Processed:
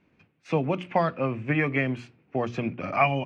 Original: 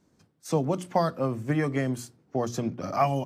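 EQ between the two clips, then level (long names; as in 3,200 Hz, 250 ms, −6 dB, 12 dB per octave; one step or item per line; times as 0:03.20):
low-pass with resonance 2,500 Hz, resonance Q 6.1
0.0 dB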